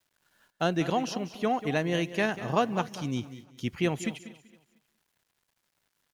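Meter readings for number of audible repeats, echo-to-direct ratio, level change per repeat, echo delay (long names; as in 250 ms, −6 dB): 4, −13.0 dB, repeats not evenly spaced, 192 ms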